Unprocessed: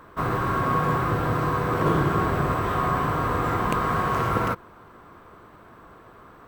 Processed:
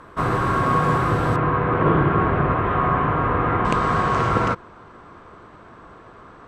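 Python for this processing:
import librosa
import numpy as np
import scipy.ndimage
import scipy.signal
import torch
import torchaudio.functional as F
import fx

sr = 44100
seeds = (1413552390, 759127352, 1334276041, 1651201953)

y = fx.lowpass(x, sr, hz=fx.steps((0.0, 11000.0), (1.36, 2800.0), (3.65, 7700.0)), slope=24)
y = y * librosa.db_to_amplitude(4.0)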